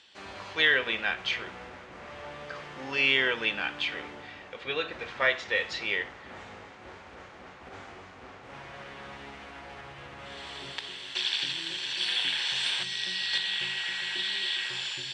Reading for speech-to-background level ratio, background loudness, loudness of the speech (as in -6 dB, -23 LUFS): 4.5 dB, -32.0 LUFS, -27.5 LUFS